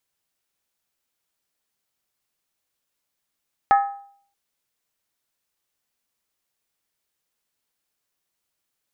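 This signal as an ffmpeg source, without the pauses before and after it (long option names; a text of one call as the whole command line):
ffmpeg -f lavfi -i "aevalsrc='0.316*pow(10,-3*t/0.57)*sin(2*PI*800*t)+0.133*pow(10,-3*t/0.451)*sin(2*PI*1275.2*t)+0.0562*pow(10,-3*t/0.39)*sin(2*PI*1708.8*t)+0.0237*pow(10,-3*t/0.376)*sin(2*PI*1836.8*t)+0.01*pow(10,-3*t/0.35)*sin(2*PI*2122.4*t)':duration=0.63:sample_rate=44100" out.wav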